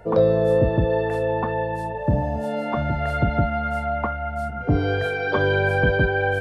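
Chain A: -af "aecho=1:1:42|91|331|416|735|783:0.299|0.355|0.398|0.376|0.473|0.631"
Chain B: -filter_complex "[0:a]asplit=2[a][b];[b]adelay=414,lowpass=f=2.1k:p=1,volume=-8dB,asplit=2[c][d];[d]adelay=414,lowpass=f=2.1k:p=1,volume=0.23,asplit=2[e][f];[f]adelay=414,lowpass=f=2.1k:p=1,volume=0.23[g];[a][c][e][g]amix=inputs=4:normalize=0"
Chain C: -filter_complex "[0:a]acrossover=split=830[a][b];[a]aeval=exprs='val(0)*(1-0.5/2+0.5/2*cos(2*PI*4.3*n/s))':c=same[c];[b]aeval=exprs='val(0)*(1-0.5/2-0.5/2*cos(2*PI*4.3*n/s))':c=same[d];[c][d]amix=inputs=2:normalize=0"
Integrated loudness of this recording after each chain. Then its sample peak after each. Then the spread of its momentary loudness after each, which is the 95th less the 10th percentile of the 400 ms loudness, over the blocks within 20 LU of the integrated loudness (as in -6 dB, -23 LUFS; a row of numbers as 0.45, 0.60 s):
-19.0, -22.0, -24.5 LUFS; -4.5, -7.0, -8.5 dBFS; 6, 7, 7 LU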